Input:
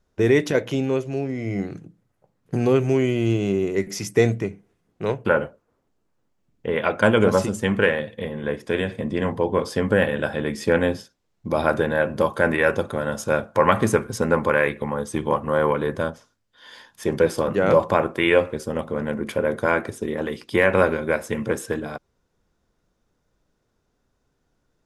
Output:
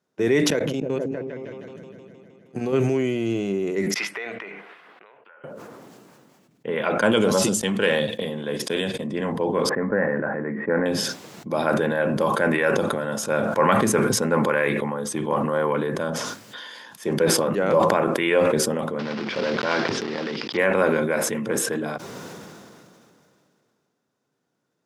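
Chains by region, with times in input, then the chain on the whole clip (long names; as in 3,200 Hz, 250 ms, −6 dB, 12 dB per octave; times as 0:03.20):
0:00.50–0:02.73: output level in coarse steps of 22 dB + echo whose low-pass opens from repeat to repeat 156 ms, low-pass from 200 Hz, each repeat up 1 octave, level −3 dB
0:03.94–0:05.44: high-pass filter 1,300 Hz + downward compressor, threshold −43 dBFS + high-frequency loss of the air 460 metres
0:07.11–0:09.07: noise gate −32 dBFS, range −22 dB + high shelf with overshoot 2,700 Hz +7 dB, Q 1.5
0:09.69–0:10.86: Chebyshev low-pass filter 2,000 Hz, order 5 + low-shelf EQ 62 Hz −11 dB
0:18.99–0:20.59: one scale factor per block 3 bits + Chebyshev low-pass filter 5,200 Hz, order 4 + transient designer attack −2 dB, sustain +10 dB
whole clip: high-pass filter 140 Hz 24 dB per octave; level that may fall only so fast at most 23 dB per second; level −3 dB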